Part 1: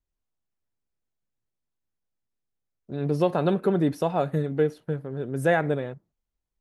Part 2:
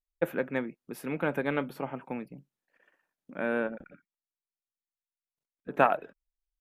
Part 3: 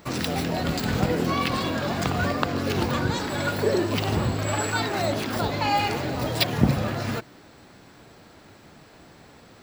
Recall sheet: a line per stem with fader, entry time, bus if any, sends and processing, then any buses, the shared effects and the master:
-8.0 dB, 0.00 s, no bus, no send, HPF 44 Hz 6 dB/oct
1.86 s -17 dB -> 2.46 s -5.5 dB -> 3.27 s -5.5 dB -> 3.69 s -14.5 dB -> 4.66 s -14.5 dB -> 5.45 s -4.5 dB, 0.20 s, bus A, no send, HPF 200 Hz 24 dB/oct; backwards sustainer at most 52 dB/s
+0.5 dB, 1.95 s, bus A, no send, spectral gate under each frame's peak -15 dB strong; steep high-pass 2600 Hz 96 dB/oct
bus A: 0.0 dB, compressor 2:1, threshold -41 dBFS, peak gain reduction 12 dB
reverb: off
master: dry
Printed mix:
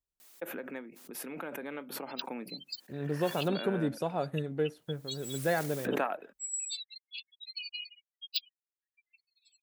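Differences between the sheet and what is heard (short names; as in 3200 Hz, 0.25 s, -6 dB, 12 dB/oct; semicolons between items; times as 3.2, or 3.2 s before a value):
stem 2 -17.0 dB -> -6.0 dB; master: extra high shelf 6100 Hz +6 dB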